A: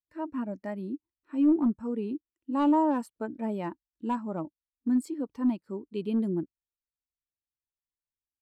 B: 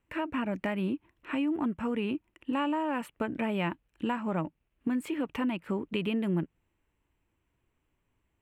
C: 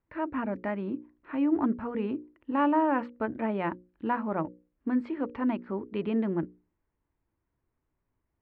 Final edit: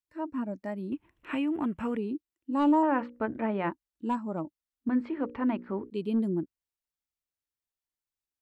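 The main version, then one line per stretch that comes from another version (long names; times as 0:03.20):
A
0:00.92–0:01.97: punch in from B
0:02.83–0:03.71: punch in from C
0:04.89–0:05.90: punch in from C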